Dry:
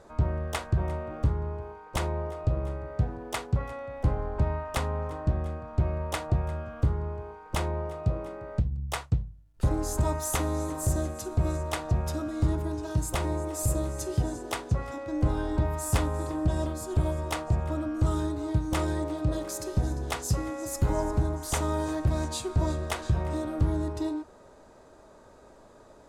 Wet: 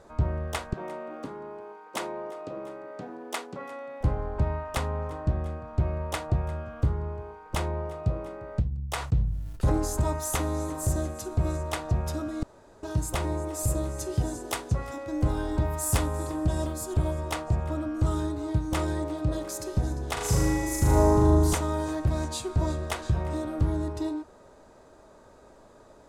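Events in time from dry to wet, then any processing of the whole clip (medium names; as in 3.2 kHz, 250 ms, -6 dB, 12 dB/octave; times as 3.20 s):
0.73–4.01 s: Chebyshev high-pass 240 Hz, order 3
8.94–9.99 s: decay stretcher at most 47 dB/s
12.43–12.83 s: room tone
14.21–16.94 s: treble shelf 6.9 kHz +8 dB
20.13–21.55 s: flutter echo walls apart 6.6 m, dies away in 1.2 s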